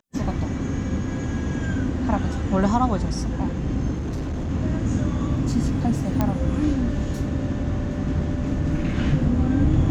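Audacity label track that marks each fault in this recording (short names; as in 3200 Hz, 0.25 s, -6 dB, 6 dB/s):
3.940000	4.510000	clipped -24 dBFS
6.210000	6.210000	pop -9 dBFS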